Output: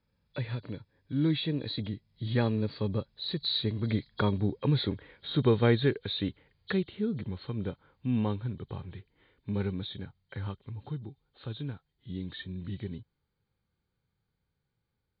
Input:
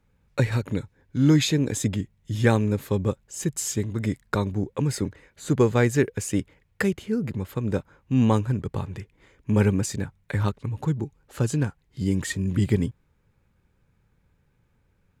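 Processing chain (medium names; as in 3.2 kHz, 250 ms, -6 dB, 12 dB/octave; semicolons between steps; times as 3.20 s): knee-point frequency compression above 3.1 kHz 4:1; Doppler pass-by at 4.72 s, 13 m/s, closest 18 m; bass shelf 60 Hz -8 dB; in parallel at -0.5 dB: compression, threshold -39 dBFS, peak gain reduction 21 dB; on the sum: harmonic-percussive split harmonic +5 dB; trim -6 dB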